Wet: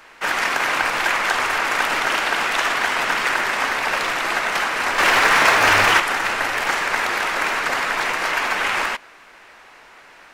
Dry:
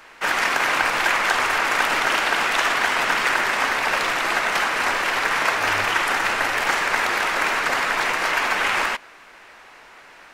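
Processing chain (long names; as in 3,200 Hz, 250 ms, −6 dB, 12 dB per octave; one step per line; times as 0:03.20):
0:04.98–0:06.00: leveller curve on the samples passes 2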